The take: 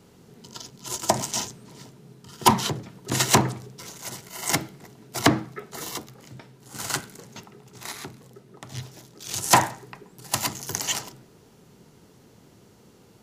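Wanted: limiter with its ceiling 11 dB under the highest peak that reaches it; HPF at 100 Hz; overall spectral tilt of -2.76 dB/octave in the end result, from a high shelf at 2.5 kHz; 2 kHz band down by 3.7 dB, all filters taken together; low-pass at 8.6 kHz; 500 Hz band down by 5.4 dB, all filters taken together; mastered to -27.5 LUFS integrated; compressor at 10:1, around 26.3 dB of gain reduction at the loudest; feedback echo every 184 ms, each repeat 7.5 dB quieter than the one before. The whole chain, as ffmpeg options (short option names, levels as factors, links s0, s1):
-af "highpass=100,lowpass=8600,equalizer=f=500:t=o:g=-8,equalizer=f=2000:t=o:g=-6,highshelf=f=2500:g=4,acompressor=threshold=0.00891:ratio=10,alimiter=level_in=2.99:limit=0.0631:level=0:latency=1,volume=0.335,aecho=1:1:184|368|552|736|920:0.422|0.177|0.0744|0.0312|0.0131,volume=9.44"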